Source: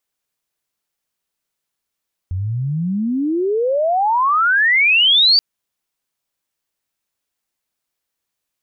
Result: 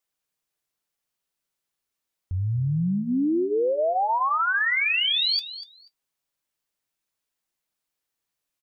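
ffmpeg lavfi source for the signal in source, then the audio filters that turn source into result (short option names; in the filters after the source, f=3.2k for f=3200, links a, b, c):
-f lavfi -i "aevalsrc='pow(10,(-19+10.5*t/3.08)/20)*sin(2*PI*87*3.08/log(4700/87)*(exp(log(4700/87)*t/3.08)-1))':d=3.08:s=44100"
-af "alimiter=limit=-16dB:level=0:latency=1:release=228,flanger=delay=6.1:depth=1.6:regen=-59:speed=0.27:shape=triangular,aecho=1:1:243|486:0.2|0.0339"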